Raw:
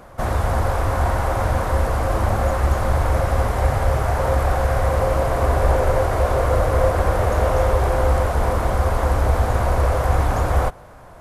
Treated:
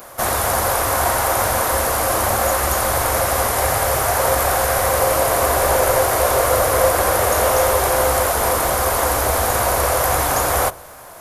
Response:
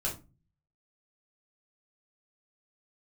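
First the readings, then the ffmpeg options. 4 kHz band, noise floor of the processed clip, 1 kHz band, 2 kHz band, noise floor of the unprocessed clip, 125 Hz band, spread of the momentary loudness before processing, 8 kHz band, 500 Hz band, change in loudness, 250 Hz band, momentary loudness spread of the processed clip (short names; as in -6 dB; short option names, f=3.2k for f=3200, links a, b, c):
+11.5 dB, -38 dBFS, +5.0 dB, +7.0 dB, -42 dBFS, -7.5 dB, 3 LU, +18.5 dB, +3.0 dB, +3.5 dB, -1.0 dB, 2 LU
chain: -filter_complex "[0:a]aemphasis=mode=production:type=riaa,bandreject=f=8k:w=20,asplit=2[a][b];[1:a]atrim=start_sample=2205,lowpass=1k[c];[b][c]afir=irnorm=-1:irlink=0,volume=-18dB[d];[a][d]amix=inputs=2:normalize=0,volume=5dB"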